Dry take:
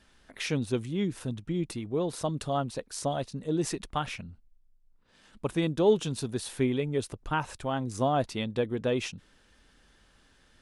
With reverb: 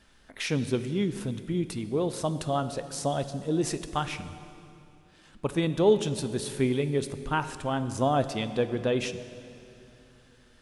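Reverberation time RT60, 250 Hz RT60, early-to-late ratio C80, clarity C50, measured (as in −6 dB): 2.8 s, 3.5 s, 12.5 dB, 12.0 dB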